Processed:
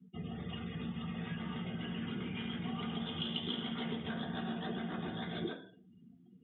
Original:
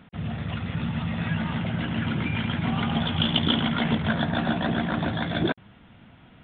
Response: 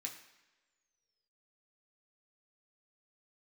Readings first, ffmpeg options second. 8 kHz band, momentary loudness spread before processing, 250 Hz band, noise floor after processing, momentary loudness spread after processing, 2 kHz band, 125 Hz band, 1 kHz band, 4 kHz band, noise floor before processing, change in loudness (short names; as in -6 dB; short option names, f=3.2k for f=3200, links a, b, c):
n/a, 7 LU, -12.5 dB, -62 dBFS, 5 LU, -15.5 dB, -15.5 dB, -15.0 dB, -12.5 dB, -53 dBFS, -13.5 dB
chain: -filter_complex "[0:a]acrossover=split=230|500|1900[a][b][c][d];[b]acontrast=32[e];[a][e][c][d]amix=inputs=4:normalize=0[f];[1:a]atrim=start_sample=2205,asetrate=70560,aresample=44100[g];[f][g]afir=irnorm=-1:irlink=0,afftdn=nr=30:nf=-50,acompressor=threshold=-43dB:ratio=2.5,volume=2.5dB"